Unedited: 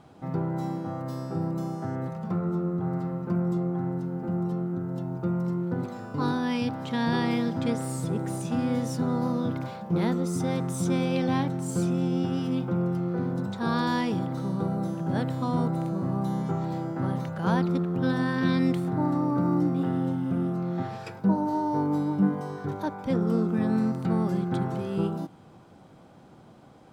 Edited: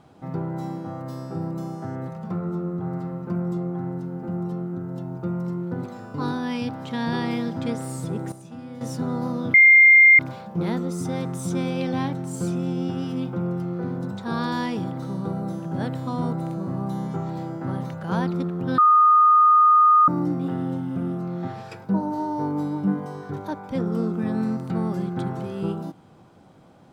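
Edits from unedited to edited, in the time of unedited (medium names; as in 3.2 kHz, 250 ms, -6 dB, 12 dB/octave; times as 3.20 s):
8.32–8.81 s: gain -11.5 dB
9.54 s: add tone 2.11 kHz -8.5 dBFS 0.65 s
18.13–19.43 s: bleep 1.23 kHz -11.5 dBFS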